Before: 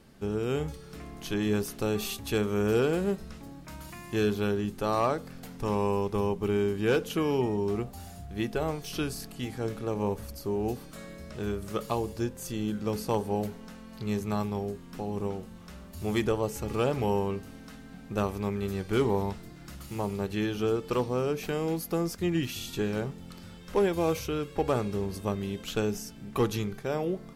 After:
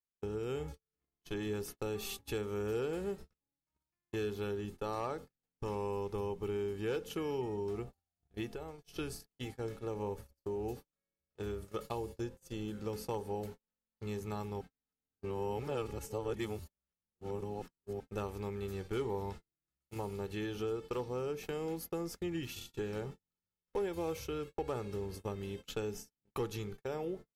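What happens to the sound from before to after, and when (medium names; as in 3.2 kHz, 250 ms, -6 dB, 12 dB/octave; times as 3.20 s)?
8.48–8.91 s: compression 8:1, threshold -32 dBFS
14.61–18.00 s: reverse
whole clip: gate -36 dBFS, range -47 dB; comb 2.3 ms, depth 37%; compression 2:1, threshold -34 dBFS; trim -4.5 dB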